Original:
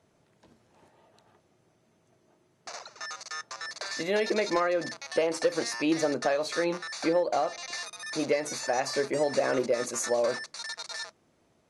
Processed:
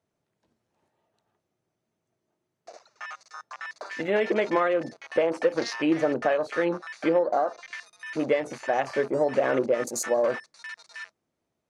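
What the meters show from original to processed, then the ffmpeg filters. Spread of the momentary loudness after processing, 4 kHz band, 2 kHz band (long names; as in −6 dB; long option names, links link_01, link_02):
17 LU, −6.0 dB, +1.5 dB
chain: -af "afwtdn=0.0158,volume=3dB"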